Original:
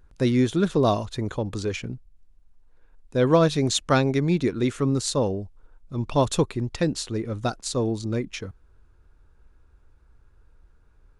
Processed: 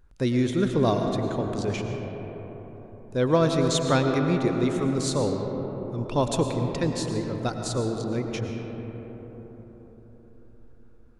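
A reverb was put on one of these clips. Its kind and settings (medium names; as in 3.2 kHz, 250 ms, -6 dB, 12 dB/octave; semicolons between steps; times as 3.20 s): algorithmic reverb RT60 4.8 s, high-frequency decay 0.3×, pre-delay 70 ms, DRR 3.5 dB; trim -3 dB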